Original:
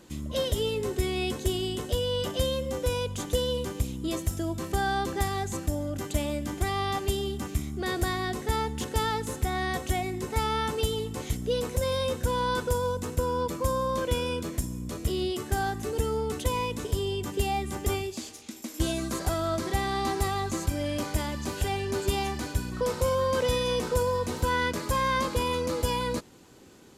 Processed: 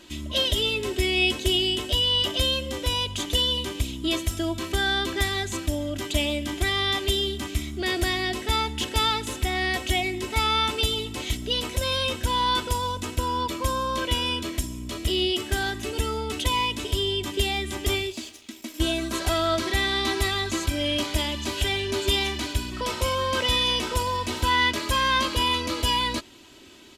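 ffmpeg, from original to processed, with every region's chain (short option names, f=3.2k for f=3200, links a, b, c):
-filter_complex "[0:a]asettb=1/sr,asplit=3[a][b][c];[a]atrim=end=18.124[d];[b]atrim=start=18.12:end=19.14,asetpts=PTS-STARTPTS,afade=t=in:d=0.004:c=qsin,afade=t=out:st=1.016:d=0.004:c=qsin,equalizer=f=4.3k:t=o:w=2.6:g=-5,aeval=exprs='sgn(val(0))*max(abs(val(0))-0.00141,0)':c=same[e];[c]atrim=start=19.136[f];[d][e]acrossfade=d=0.004:c1=hsin:c2=qsin[g];[g][f]acrossfade=d=0.004:c1=qsin:c2=hsin,equalizer=f=3.1k:t=o:w=1.4:g=12,aecho=1:1:3.1:0.58"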